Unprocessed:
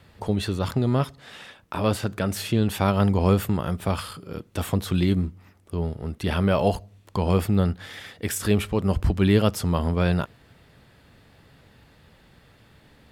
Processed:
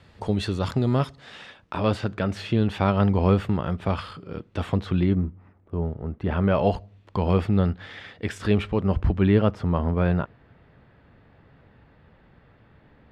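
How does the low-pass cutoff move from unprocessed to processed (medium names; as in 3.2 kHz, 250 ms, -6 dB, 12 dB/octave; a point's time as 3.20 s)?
1.05 s 7.3 kHz
2.32 s 3.4 kHz
4.76 s 3.4 kHz
5.26 s 1.4 kHz
6.25 s 1.4 kHz
6.67 s 3.4 kHz
8.59 s 3.4 kHz
9.51 s 1.9 kHz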